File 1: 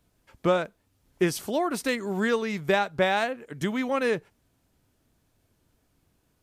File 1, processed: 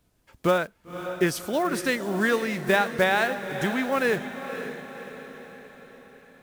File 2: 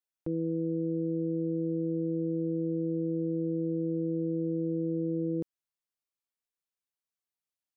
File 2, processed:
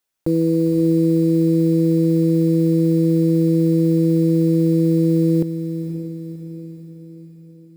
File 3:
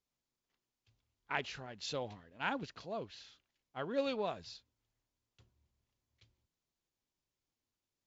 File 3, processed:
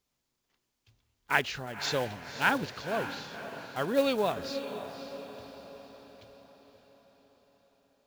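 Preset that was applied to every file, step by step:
block floating point 5-bit; dynamic EQ 1600 Hz, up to +5 dB, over -44 dBFS, Q 2.5; diffused feedback echo 0.536 s, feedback 52%, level -10 dB; normalise peaks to -9 dBFS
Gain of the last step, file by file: +0.5, +14.0, +8.5 dB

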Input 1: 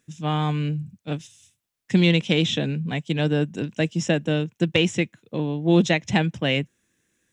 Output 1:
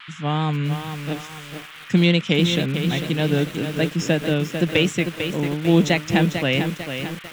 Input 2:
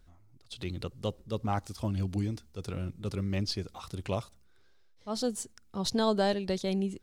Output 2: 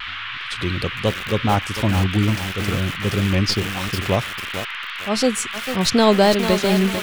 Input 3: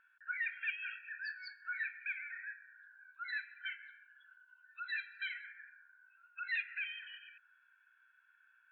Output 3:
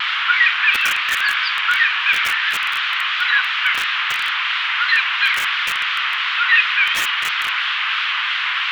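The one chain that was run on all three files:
band noise 1100–3300 Hz -43 dBFS; vibrato 2.9 Hz 56 cents; lo-fi delay 0.447 s, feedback 55%, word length 6-bit, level -7 dB; normalise peaks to -3 dBFS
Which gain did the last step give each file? +1.5, +12.5, +22.0 dB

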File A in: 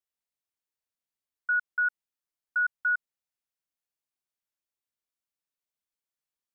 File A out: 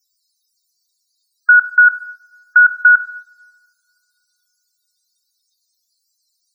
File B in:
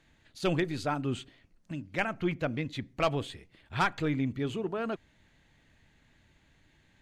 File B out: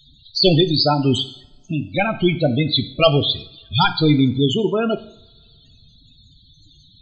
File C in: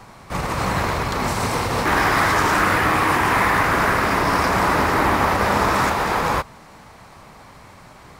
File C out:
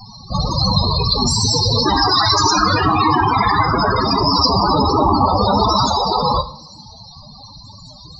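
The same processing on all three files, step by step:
resonant high shelf 2800 Hz +13.5 dB, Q 1.5; loudest bins only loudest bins 16; two-slope reverb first 0.55 s, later 2.2 s, from -27 dB, DRR 10 dB; normalise peaks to -2 dBFS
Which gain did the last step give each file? +22.0, +14.5, +8.0 dB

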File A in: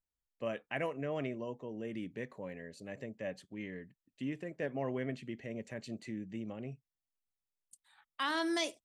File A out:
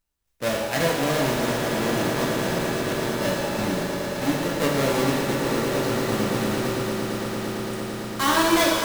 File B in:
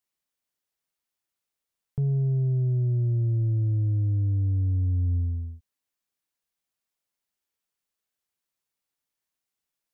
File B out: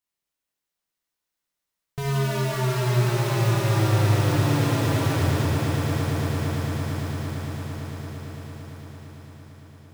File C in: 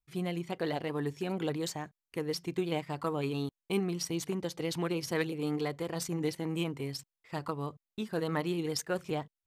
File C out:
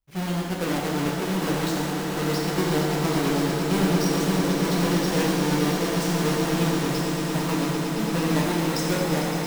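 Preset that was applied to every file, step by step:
half-waves squared off; swelling echo 0.113 s, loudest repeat 8, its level -11.5 dB; shimmer reverb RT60 1.3 s, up +7 st, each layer -8 dB, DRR -2 dB; match loudness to -24 LUFS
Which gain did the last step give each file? +6.0, -5.5, -1.5 dB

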